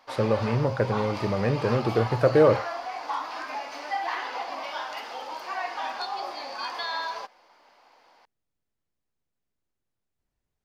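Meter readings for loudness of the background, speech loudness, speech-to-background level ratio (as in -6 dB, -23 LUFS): -33.0 LUFS, -24.5 LUFS, 8.5 dB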